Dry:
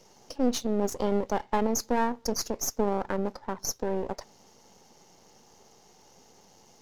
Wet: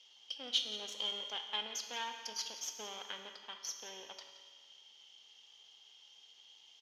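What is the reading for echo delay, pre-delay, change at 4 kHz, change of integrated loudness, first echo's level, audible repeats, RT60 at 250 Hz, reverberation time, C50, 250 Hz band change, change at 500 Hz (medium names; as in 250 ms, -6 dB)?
174 ms, 7 ms, +4.5 dB, -10.0 dB, -14.0 dB, 1, 1.7 s, 1.7 s, 6.5 dB, -29.5 dB, -23.0 dB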